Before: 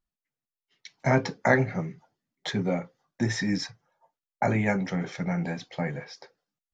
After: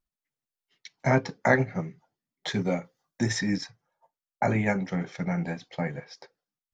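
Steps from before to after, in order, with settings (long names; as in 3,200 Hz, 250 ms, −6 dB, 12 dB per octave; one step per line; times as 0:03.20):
0:02.50–0:03.38: high-shelf EQ 3,900 Hz → 6,300 Hz +11 dB
transient designer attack 0 dB, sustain −6 dB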